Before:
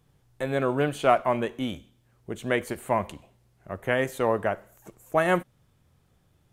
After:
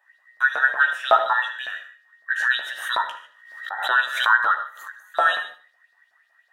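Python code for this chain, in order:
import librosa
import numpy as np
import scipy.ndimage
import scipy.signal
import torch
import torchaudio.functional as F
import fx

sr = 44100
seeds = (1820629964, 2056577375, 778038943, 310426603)

y = fx.band_invert(x, sr, width_hz=2000)
y = scipy.signal.sosfilt(scipy.signal.butter(4, 360.0, 'highpass', fs=sr, output='sos'), y)
y = fx.high_shelf(y, sr, hz=3600.0, db=-7.0)
y = fx.filter_lfo_highpass(y, sr, shape='saw_up', hz=5.4, low_hz=590.0, high_hz=5000.0, q=5.0)
y = fx.doubler(y, sr, ms=15.0, db=-6)
y = fx.echo_feedback(y, sr, ms=76, feedback_pct=29, wet_db=-15.5)
y = fx.rev_gated(y, sr, seeds[0], gate_ms=170, shape='flat', drr_db=8.0)
y = fx.pre_swell(y, sr, db_per_s=72.0, at=(2.3, 5.0))
y = y * librosa.db_to_amplitude(-2.0)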